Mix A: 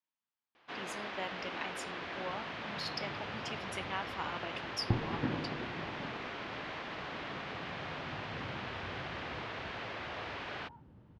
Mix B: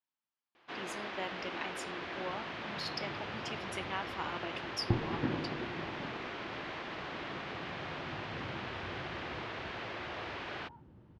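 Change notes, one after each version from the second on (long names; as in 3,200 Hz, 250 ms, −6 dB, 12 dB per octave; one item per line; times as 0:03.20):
master: add parametric band 350 Hz +5.5 dB 0.22 octaves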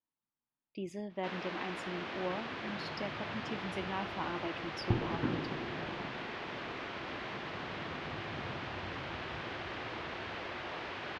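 speech: add spectral tilt −3.5 dB per octave
first sound: entry +0.55 s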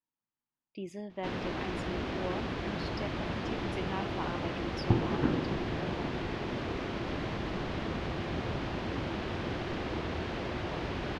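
first sound: remove resonant band-pass 1,900 Hz, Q 0.54
second sound +4.5 dB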